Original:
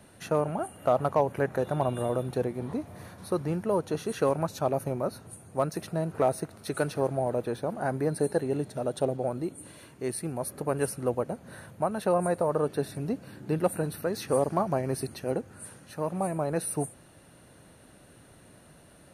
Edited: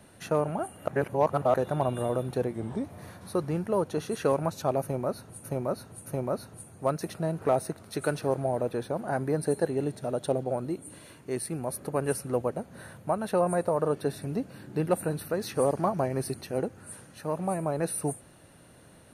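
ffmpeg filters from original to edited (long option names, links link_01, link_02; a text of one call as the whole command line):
ffmpeg -i in.wav -filter_complex "[0:a]asplit=7[link_01][link_02][link_03][link_04][link_05][link_06][link_07];[link_01]atrim=end=0.882[link_08];[link_02]atrim=start=0.878:end=1.542,asetpts=PTS-STARTPTS,areverse[link_09];[link_03]atrim=start=1.538:end=2.544[link_10];[link_04]atrim=start=2.54:end=2.81,asetpts=PTS-STARTPTS,asetrate=39690,aresample=44100[link_11];[link_05]atrim=start=2.806:end=5.412[link_12];[link_06]atrim=start=4.788:end=5.412[link_13];[link_07]atrim=start=4.788[link_14];[link_08][link_09]acrossfade=duration=0.004:curve1=hsin:curve2=hsin[link_15];[link_15][link_10]acrossfade=duration=0.004:curve1=hsin:curve2=hsin[link_16];[link_16][link_11]acrossfade=duration=0.004:curve1=hsin:curve2=hsin[link_17];[link_17][link_12]acrossfade=duration=0.004:curve1=hsin:curve2=hsin[link_18];[link_18][link_13]acrossfade=duration=0.004:curve1=hsin:curve2=hsin[link_19];[link_19][link_14]acrossfade=duration=0.004:curve1=hsin:curve2=hsin" out.wav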